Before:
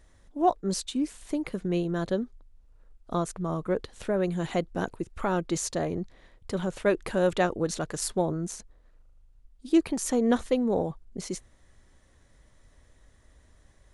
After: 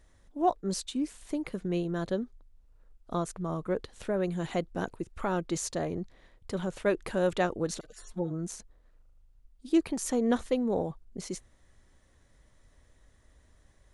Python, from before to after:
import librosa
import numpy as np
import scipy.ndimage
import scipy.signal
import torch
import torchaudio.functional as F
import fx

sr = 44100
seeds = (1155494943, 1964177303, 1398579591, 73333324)

y = fx.hpss_only(x, sr, part='harmonic', at=(7.79, 8.38), fade=0.02)
y = y * 10.0 ** (-3.0 / 20.0)